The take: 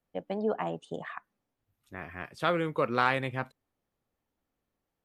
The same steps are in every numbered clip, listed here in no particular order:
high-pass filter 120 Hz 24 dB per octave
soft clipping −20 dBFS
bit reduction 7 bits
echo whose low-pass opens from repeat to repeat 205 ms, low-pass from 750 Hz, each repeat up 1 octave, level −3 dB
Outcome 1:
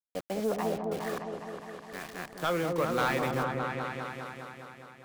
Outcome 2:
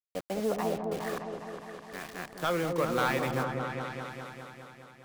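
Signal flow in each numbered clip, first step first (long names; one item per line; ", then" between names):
high-pass filter, then bit reduction, then echo whose low-pass opens from repeat to repeat, then soft clipping
high-pass filter, then soft clipping, then bit reduction, then echo whose low-pass opens from repeat to repeat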